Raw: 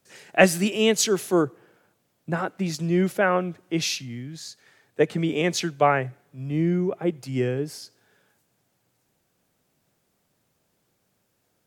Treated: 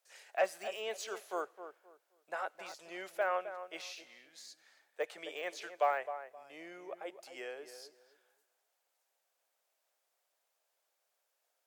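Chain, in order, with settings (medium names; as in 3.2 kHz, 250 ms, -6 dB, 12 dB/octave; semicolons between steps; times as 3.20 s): de-esser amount 100%; Chebyshev high-pass 600 Hz, order 3; on a send: filtered feedback delay 262 ms, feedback 25%, low-pass 1.4 kHz, level -10 dB; on the sum: trim -8.5 dB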